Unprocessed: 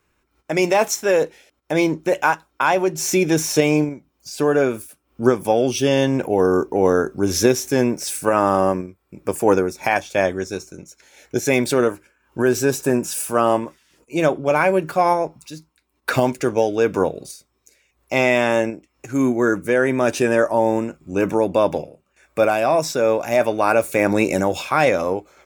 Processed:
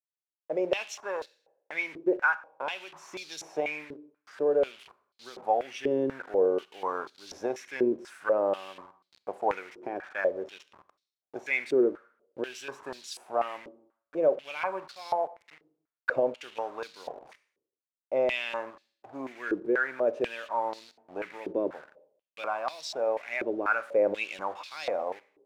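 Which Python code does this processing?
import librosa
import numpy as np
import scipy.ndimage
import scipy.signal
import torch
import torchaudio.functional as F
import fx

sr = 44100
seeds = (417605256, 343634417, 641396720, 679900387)

y = fx.delta_hold(x, sr, step_db=-29.5)
y = fx.rev_schroeder(y, sr, rt60_s=0.65, comb_ms=30, drr_db=16.0)
y = fx.filter_held_bandpass(y, sr, hz=4.1, low_hz=370.0, high_hz=4200.0)
y = y * 10.0 ** (-2.0 / 20.0)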